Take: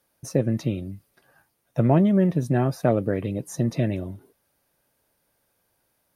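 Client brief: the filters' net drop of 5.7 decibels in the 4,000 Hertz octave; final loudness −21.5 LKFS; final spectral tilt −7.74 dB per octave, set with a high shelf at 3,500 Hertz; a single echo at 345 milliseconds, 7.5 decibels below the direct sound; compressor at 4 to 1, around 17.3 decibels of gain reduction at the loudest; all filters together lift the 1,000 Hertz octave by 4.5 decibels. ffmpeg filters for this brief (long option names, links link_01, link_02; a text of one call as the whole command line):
ffmpeg -i in.wav -af "equalizer=frequency=1000:width_type=o:gain=7.5,highshelf=frequency=3500:gain=-3.5,equalizer=frequency=4000:width_type=o:gain=-5.5,acompressor=threshold=-34dB:ratio=4,aecho=1:1:345:0.422,volume=15.5dB" out.wav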